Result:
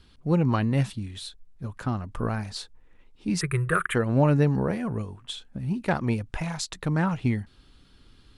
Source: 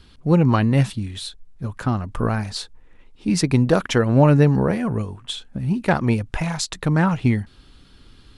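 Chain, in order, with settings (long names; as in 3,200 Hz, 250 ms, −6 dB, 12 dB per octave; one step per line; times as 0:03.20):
0:03.41–0:03.95: drawn EQ curve 170 Hz 0 dB, 250 Hz −30 dB, 370 Hz +1 dB, 840 Hz −15 dB, 1,200 Hz +11 dB, 1,700 Hz +11 dB, 3,800 Hz −8 dB, 5,600 Hz −28 dB, 8,600 Hz +13 dB, 13,000 Hz +8 dB
level −6.5 dB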